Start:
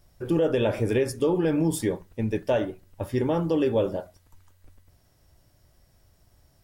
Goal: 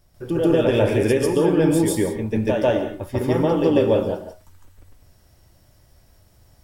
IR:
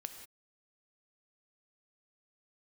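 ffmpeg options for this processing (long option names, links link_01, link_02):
-filter_complex "[0:a]asplit=2[link_01][link_02];[1:a]atrim=start_sample=2205,adelay=144[link_03];[link_02][link_03]afir=irnorm=-1:irlink=0,volume=8dB[link_04];[link_01][link_04]amix=inputs=2:normalize=0"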